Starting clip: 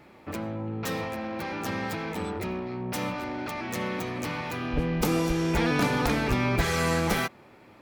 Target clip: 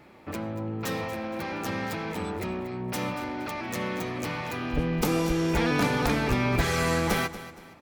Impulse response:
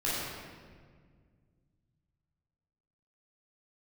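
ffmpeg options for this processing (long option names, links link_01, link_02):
-af "aecho=1:1:234|468|702:0.178|0.0622|0.0218"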